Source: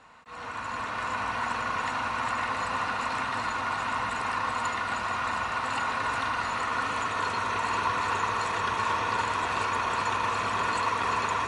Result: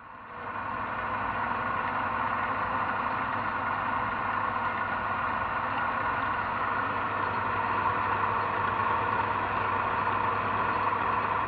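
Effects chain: Bessel low-pass 2 kHz, order 6; band-stop 420 Hz, Q 14; reverse echo 591 ms -11.5 dB; trim +1 dB

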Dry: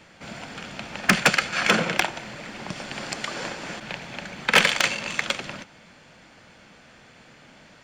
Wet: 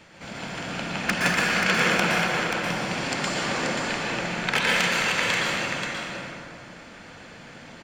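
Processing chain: compression 2.5:1, threshold -26 dBFS, peak gain reduction 10 dB; on a send: delay 532 ms -5.5 dB; on the sum: plate-style reverb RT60 2.2 s, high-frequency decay 0.5×, pre-delay 105 ms, DRR -4.5 dB

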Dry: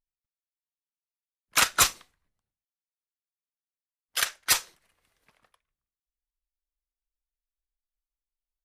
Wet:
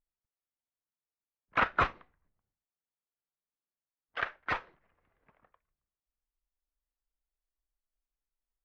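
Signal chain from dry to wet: Bessel low-pass 1.4 kHz, order 4; trim +1.5 dB

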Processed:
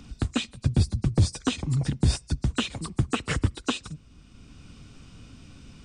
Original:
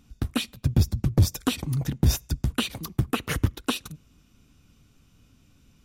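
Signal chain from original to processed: knee-point frequency compression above 3.9 kHz 1.5:1; three bands compressed up and down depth 40%

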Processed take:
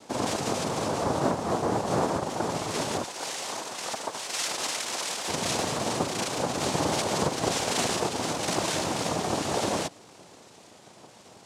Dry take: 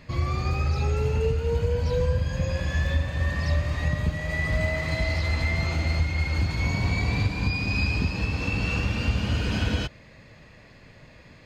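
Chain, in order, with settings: noise-vocoded speech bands 2; 3.04–5.28 s: high-pass 1.3 kHz 6 dB/octave

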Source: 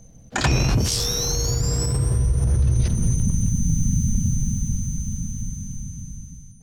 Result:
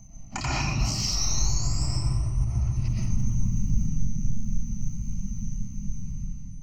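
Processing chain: reverb removal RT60 0.74 s; compression 4:1, threshold -27 dBFS, peak gain reduction 10 dB; static phaser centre 2.4 kHz, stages 8; 3.87–5.91 s: flange 1.6 Hz, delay 3.1 ms, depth 6.4 ms, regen -30%; reverberation RT60 0.75 s, pre-delay 75 ms, DRR -5.5 dB; loudspeaker Doppler distortion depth 0.13 ms

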